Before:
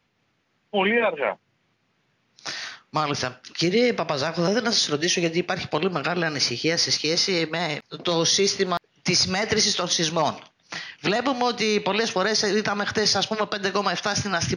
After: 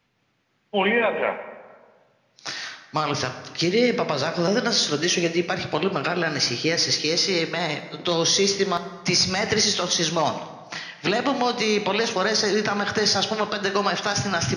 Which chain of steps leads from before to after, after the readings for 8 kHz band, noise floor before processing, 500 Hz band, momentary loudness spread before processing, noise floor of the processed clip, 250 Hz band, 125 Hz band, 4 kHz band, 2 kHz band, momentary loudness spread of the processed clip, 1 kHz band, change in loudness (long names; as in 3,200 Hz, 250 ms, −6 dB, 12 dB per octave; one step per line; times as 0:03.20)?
+0.5 dB, −70 dBFS, +0.5 dB, 8 LU, −66 dBFS, +0.5 dB, +0.5 dB, +0.5 dB, +0.5 dB, 9 LU, +0.5 dB, +0.5 dB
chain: dense smooth reverb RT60 1.5 s, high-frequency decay 0.6×, DRR 8 dB